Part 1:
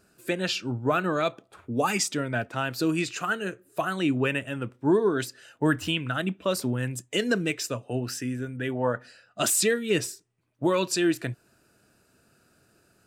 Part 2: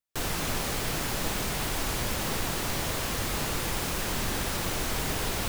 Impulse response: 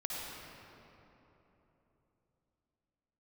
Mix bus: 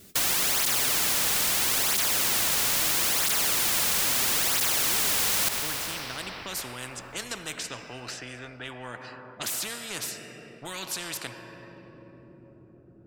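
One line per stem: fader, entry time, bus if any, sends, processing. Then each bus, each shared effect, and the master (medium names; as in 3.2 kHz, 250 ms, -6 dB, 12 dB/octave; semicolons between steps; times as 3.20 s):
-17.0 dB, 0.00 s, send -20 dB, level-controlled noise filter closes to 410 Hz, open at -23.5 dBFS
+2.0 dB, 0.00 s, send -11.5 dB, tilt shelf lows -10 dB, about 720 Hz; cancelling through-zero flanger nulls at 0.76 Hz, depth 3.3 ms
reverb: on, RT60 3.5 s, pre-delay 51 ms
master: spectrum-flattening compressor 4:1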